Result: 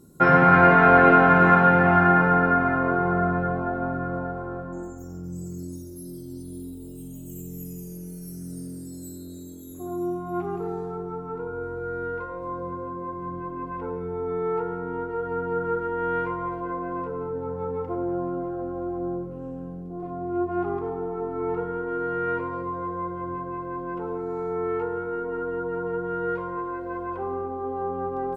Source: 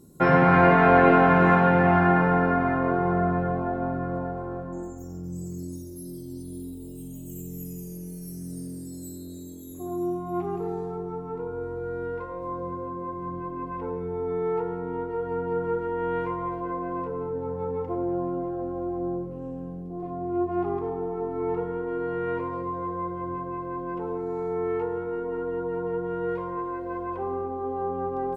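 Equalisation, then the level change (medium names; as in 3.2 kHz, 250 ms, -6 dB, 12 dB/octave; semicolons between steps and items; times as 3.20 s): peaking EQ 1.4 kHz +8 dB 0.24 oct; 0.0 dB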